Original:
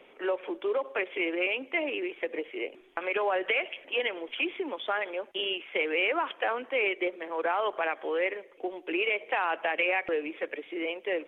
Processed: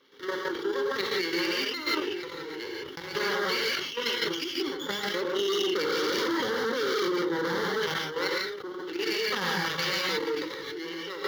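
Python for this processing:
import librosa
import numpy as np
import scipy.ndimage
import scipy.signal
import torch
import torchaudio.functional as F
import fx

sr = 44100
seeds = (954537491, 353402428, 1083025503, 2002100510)

y = fx.lower_of_two(x, sr, delay_ms=0.37)
y = fx.peak_eq(y, sr, hz=370.0, db=14.0, octaves=2.6, at=(5.14, 7.64))
y = fx.rev_gated(y, sr, seeds[0], gate_ms=190, shape='rising', drr_db=-3.5)
y = np.clip(10.0 ** (18.0 / 20.0) * y, -1.0, 1.0) / 10.0 ** (18.0 / 20.0)
y = fx.level_steps(y, sr, step_db=9)
y = scipy.signal.sosfilt(scipy.signal.butter(2, 120.0, 'highpass', fs=sr, output='sos'), y)
y = fx.bass_treble(y, sr, bass_db=-8, treble_db=7)
y = fx.fixed_phaser(y, sr, hz=2500.0, stages=6)
y = fx.sustainer(y, sr, db_per_s=49.0)
y = y * librosa.db_to_amplitude(5.5)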